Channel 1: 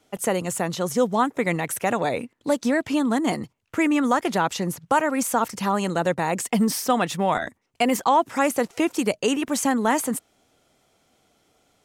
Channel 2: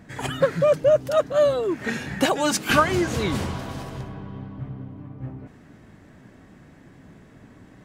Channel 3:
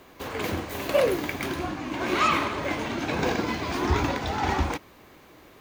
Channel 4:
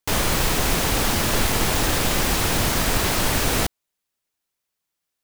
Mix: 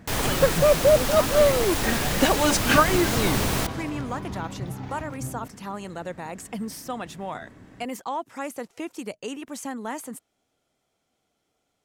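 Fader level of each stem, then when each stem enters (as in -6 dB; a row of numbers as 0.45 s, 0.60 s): -11.5 dB, 0.0 dB, -17.5 dB, -5.5 dB; 0.00 s, 0.00 s, 0.40 s, 0.00 s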